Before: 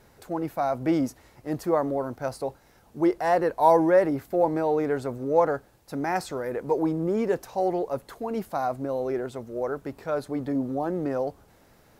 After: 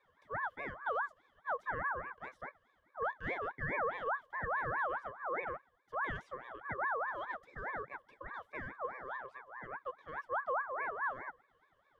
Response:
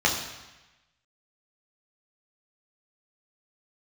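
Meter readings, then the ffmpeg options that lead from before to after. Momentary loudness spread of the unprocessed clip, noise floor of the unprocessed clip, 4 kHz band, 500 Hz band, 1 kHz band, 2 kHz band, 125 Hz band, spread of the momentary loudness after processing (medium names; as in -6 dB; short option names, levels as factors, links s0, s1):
11 LU, -58 dBFS, -13.5 dB, -18.5 dB, -10.0 dB, +1.0 dB, -16.0 dB, 12 LU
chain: -filter_complex "[0:a]asplit=3[s0][s1][s2];[s0]bandpass=f=300:t=q:w=8,volume=1[s3];[s1]bandpass=f=870:t=q:w=8,volume=0.501[s4];[s2]bandpass=f=2240:t=q:w=8,volume=0.355[s5];[s3][s4][s5]amix=inputs=3:normalize=0,alimiter=level_in=1.58:limit=0.0631:level=0:latency=1:release=94,volume=0.631,aeval=exprs='val(0)*sin(2*PI*1100*n/s+1100*0.3/4.8*sin(2*PI*4.8*n/s))':c=same,volume=1.12"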